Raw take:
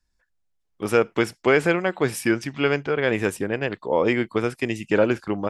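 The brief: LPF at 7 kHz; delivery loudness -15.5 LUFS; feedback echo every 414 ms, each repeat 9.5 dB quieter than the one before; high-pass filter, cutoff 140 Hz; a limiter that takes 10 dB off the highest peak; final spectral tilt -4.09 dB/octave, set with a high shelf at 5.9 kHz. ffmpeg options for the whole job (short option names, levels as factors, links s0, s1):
-af "highpass=140,lowpass=7000,highshelf=f=5900:g=7,alimiter=limit=0.2:level=0:latency=1,aecho=1:1:414|828|1242|1656:0.335|0.111|0.0365|0.012,volume=3.55"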